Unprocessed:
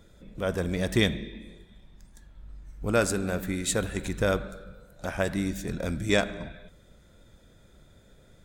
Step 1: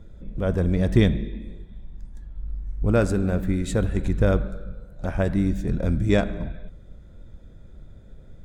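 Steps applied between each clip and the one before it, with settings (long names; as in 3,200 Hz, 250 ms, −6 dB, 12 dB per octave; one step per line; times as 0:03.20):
spectral tilt −3 dB per octave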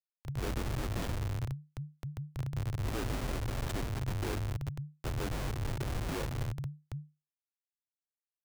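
tuned comb filter 130 Hz, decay 0.55 s, harmonics all, mix 50%
comparator with hysteresis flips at −35.5 dBFS
frequency shifter −150 Hz
level −4 dB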